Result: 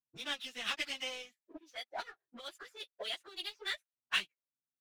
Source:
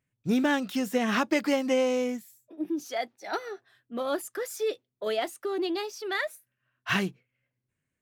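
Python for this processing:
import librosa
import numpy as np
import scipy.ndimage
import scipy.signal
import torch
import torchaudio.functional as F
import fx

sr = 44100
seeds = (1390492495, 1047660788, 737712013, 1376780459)

y = fx.auto_wah(x, sr, base_hz=230.0, top_hz=3400.0, q=2.3, full_db=-28.5, direction='up')
y = fx.power_curve(y, sr, exponent=1.4)
y = fx.stretch_vocoder_free(y, sr, factor=0.6)
y = y * librosa.db_to_amplitude(11.0)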